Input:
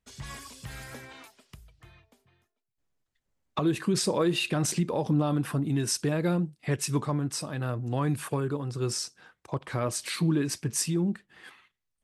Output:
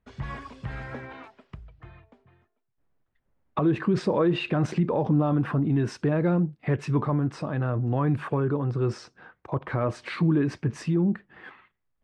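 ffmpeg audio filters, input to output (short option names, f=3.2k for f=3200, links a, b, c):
-filter_complex "[0:a]lowpass=1.7k,asplit=2[a][b];[b]alimiter=level_in=4dB:limit=-24dB:level=0:latency=1:release=14,volume=-4dB,volume=2.5dB[c];[a][c]amix=inputs=2:normalize=0"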